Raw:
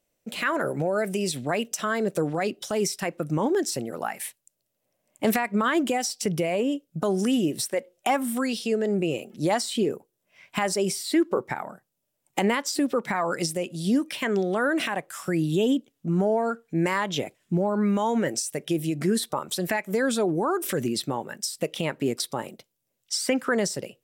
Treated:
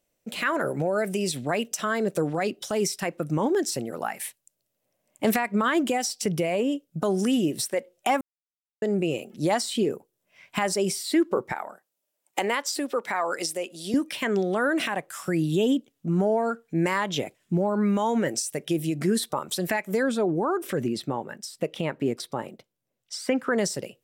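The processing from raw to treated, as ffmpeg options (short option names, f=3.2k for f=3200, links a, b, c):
-filter_complex "[0:a]asettb=1/sr,asplit=3[a][b][c];[a]atrim=end=11.524[d];[b]atrim=start=11.52:end=13.94,asetpts=PTS-STARTPTS,afade=t=in:d=0.004:c=qsin,afade=t=out:st=2.416:d=0.004:c=qsin,highpass=390[e];[c]atrim=start=13.936[f];[d][e]acrossfade=d=0.004:c1=hsin:c2=qsin[g];[g][f]acrossfade=d=0.004:c1=qsin:c2=hsin,asettb=1/sr,asplit=3[h][i][j];[h]atrim=end=20.034[k];[i]atrim=start=20.03:end=23.58,asetpts=PTS-STARTPTS,afade=t=in:d=0.004:c=qsin,afade=t=out:st=3.546:d=0.004:c=qsin,highshelf=f=3.5k:g=-10.5[l];[j]atrim=start=23.576[m];[k][l]acrossfade=d=0.004:c1=hsin:c2=qsin[n];[n][m]acrossfade=d=0.004:c1=qsin:c2=hsin,asplit=3[o][p][q];[o]atrim=end=8.21,asetpts=PTS-STARTPTS,afade=t=out:st=8.206:d=0.004:c=hsin[r];[p]atrim=start=8.21:end=8.82,asetpts=PTS-STARTPTS,volume=0[s];[q]atrim=start=8.82,asetpts=PTS-STARTPTS,afade=t=in:d=0.004:c=hsin[t];[r][s][t]concat=n=3:v=0:a=1"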